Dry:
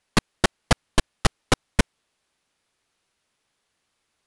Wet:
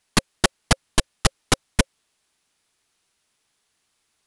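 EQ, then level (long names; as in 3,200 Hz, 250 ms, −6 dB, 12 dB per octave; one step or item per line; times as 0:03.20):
high-shelf EQ 4,200 Hz +7.5 dB
notch filter 540 Hz, Q 12
0.0 dB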